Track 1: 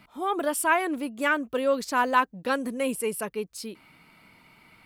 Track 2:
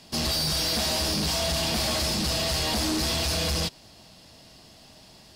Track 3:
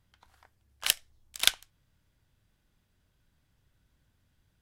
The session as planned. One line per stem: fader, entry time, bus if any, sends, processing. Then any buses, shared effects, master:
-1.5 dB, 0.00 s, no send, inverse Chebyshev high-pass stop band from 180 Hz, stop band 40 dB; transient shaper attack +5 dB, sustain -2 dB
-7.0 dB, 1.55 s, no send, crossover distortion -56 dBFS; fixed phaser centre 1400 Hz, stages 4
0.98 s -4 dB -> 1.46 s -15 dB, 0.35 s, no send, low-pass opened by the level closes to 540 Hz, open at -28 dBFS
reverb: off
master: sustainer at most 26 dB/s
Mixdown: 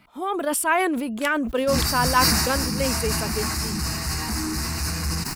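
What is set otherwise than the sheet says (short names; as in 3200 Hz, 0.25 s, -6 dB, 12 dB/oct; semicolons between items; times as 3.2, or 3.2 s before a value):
stem 1: missing inverse Chebyshev high-pass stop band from 180 Hz, stop band 40 dB; stem 2 -7.0 dB -> +3.0 dB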